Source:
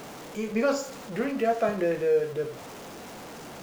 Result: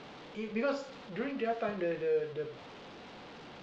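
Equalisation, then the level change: four-pole ladder low-pass 4.6 kHz, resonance 35%; band-stop 660 Hz, Q 19; 0.0 dB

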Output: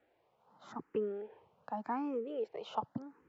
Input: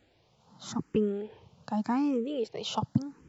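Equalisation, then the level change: three-band isolator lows -17 dB, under 340 Hz, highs -21 dB, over 2.2 kHz; -3.0 dB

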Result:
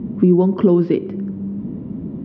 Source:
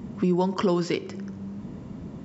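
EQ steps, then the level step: low-pass 3.6 kHz 24 dB/octave; peaking EQ 290 Hz +12.5 dB 2.1 oct; bass shelf 380 Hz +8.5 dB; -5.5 dB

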